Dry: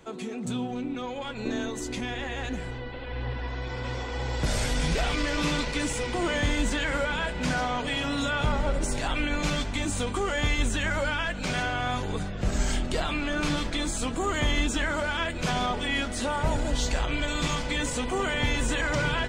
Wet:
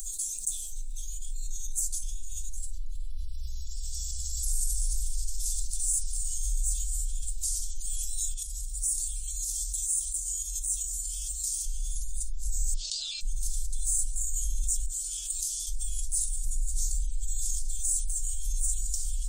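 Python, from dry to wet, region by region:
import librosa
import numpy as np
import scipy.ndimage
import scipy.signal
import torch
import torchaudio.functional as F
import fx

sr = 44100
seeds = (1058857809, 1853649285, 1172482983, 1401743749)

y = fx.chain(x, sr, fx.peak_eq(hz=1600.0, db=-8.0, octaves=0.29),
    fx.echo_single(ms=380, db=-20.0), at=(2.48, 5.72))
y = fx.chain(y, sr, fx.highpass(hz=45.0, slope=12),
    fx.over_compress(threshold_db=-29.0, ratio=-0.5),
    fx.tone_stack(knobs='5-5-5'), at=(8.34, 11.65))
y = fx.chain(y, sr, fx.ellip_bandpass(low_hz=560.0, high_hz=4700.0, order=3, stop_db=50),
    fx.env_flatten(amount_pct=70), at=(12.74, 13.21))
y = fx.chain(y, sr, fx.highpass(hz=610.0, slope=6),
    fx.high_shelf(hz=6200.0, db=-7.0),
    fx.over_compress(threshold_db=-36.0, ratio=-1.0), at=(14.86, 15.67))
y = scipy.signal.sosfilt(scipy.signal.cheby2(4, 70, [120.0, 2100.0], 'bandstop', fs=sr, output='sos'), y)
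y = fx.env_flatten(y, sr, amount_pct=70)
y = y * librosa.db_to_amplitude(7.0)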